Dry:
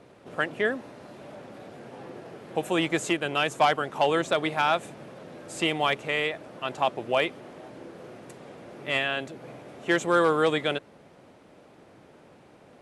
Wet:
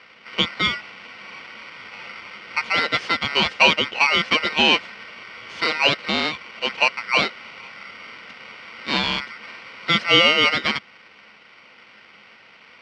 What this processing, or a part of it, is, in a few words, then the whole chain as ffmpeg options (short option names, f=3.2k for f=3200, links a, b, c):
ring modulator pedal into a guitar cabinet: -af "aeval=exprs='val(0)*sgn(sin(2*PI*1700*n/s))':c=same,highpass=87,equalizer=f=210:t=q:w=4:g=9,equalizer=f=500:t=q:w=4:g=8,equalizer=f=1.2k:t=q:w=4:g=-5,equalizer=f=2.9k:t=q:w=4:g=9,lowpass=f=4.4k:w=0.5412,lowpass=f=4.4k:w=1.3066,volume=4.5dB"